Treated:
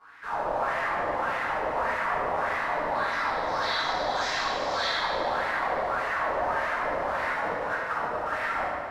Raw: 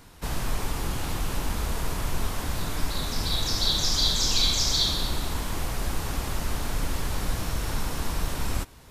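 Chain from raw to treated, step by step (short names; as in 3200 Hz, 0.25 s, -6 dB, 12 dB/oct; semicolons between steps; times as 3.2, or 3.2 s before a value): 7.33–8.27 negative-ratio compressor -30 dBFS, ratio -0.5; wah 1.7 Hz 540–2000 Hz, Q 9.8; thinning echo 74 ms, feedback 83%, level -12.5 dB; reverb RT60 2.0 s, pre-delay 4 ms, DRR -16 dB; gain +4.5 dB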